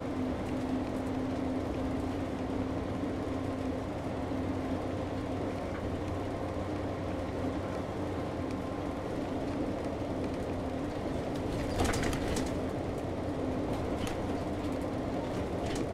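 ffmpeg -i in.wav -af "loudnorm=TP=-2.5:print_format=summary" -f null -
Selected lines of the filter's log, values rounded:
Input Integrated:    -34.9 LUFS
Input True Peak:     -17.8 dBTP
Input LRA:             1.7 LU
Input Threshold:     -44.9 LUFS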